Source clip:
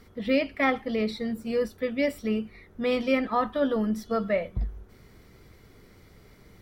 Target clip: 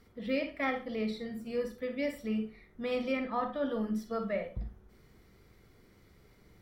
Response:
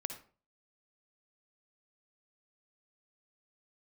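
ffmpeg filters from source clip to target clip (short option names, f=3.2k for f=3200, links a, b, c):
-filter_complex "[0:a]asettb=1/sr,asplit=3[a][b][c];[a]atrim=end=3.124[d];[b]atrim=start=3.12:end=3.66,asetpts=PTS-STARTPTS,afade=t=in:d=0.004:c=qsin,afade=t=out:st=0.536:d=0.004:c=qsin,highshelf=f=8k:g=-9[e];[c]atrim=start=3.656[f];[d][e]acrossfade=d=0.004:c1=hsin:c2=qsin[g];[g][f]acrossfade=d=0.004:c1=qsin:c2=hsin[h];[1:a]atrim=start_sample=2205,asetrate=61740,aresample=44100[i];[h][i]afir=irnorm=-1:irlink=0,volume=-4dB"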